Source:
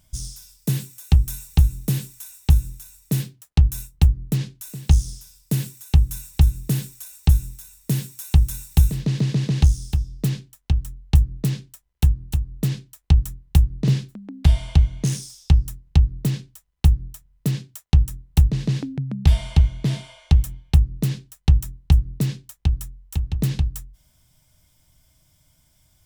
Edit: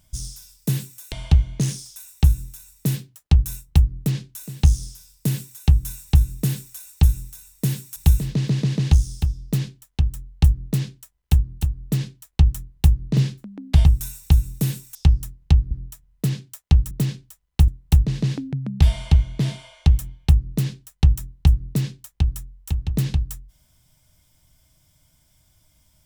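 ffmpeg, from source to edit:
-filter_complex "[0:a]asplit=9[a][b][c][d][e][f][g][h][i];[a]atrim=end=1.122[j];[b]atrim=start=14.558:end=15.402[k];[c]atrim=start=2.218:end=8.222[l];[d]atrim=start=8.668:end=14.562[m];[e]atrim=start=1.118:end=2.222[n];[f]atrim=start=15.398:end=16.162[o];[g]atrim=start=16.928:end=18.132[p];[h]atrim=start=16.158:end=16.932[q];[i]atrim=start=18.128[r];[j][k]acrossfade=d=0.004:c1=hsin:c2=hsin[s];[s][l]acrossfade=d=0.004:c1=hsin:c2=hsin[t];[t][m]acrossfade=d=0.004:c1=hsin:c2=hsin[u];[u][n]acrossfade=d=0.004:c1=hsin:c2=hsin[v];[v][o]acrossfade=d=0.004:c1=hsin:c2=hsin[w];[w][p]acrossfade=d=0.004:c1=hsin:c2=hsin[x];[x][q]acrossfade=d=0.004:c1=hsin:c2=hsin[y];[y][r]acrossfade=d=0.004:c1=hsin:c2=hsin"

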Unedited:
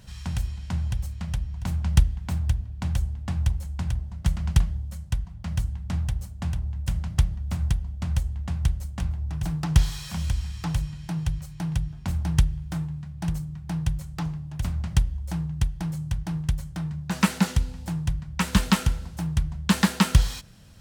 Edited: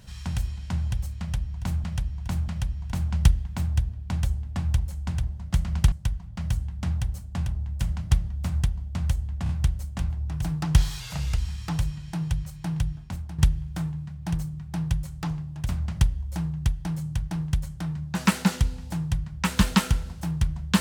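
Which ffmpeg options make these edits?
-filter_complex "[0:a]asplit=9[a][b][c][d][e][f][g][h][i];[a]atrim=end=1.842[j];[b]atrim=start=1.198:end=1.842[k];[c]atrim=start=1.198:end=4.642[l];[d]atrim=start=4.988:end=8.532[m];[e]atrim=start=8.498:end=8.532[n];[f]atrim=start=8.498:end=10.014[o];[g]atrim=start=10.01:end=10.34,asetpts=PTS-STARTPTS,asetrate=37926,aresample=44100,atrim=end_sample=16922,asetpts=PTS-STARTPTS[p];[h]atrim=start=10.336:end=12.34,asetpts=PTS-STARTPTS,afade=t=out:st=1.584:d=0.42:c=qua:silence=0.281838[q];[i]atrim=start=12.34,asetpts=PTS-STARTPTS,afade=t=in:d=0.004:c=hsin:silence=0.281838[r];[j][k]acrossfade=d=0.004:c1=hsin:c2=hsin[s];[s][l]acrossfade=d=0.004:c1=hsin:c2=hsin[t];[t][m]acrossfade=d=0.004:c1=hsin:c2=hsin[u];[u][n]acrossfade=d=0.004:c1=hsin:c2=hsin[v];[v][o]acrossfade=d=0.004:c1=hsin:c2=hsin[w];[w][p]acrossfade=d=0.004:c1=hsin:c2=hsin[x];[q][r]concat=n=2:v=0:a=1[y];[x][y]acrossfade=d=0.004:c1=hsin:c2=hsin"

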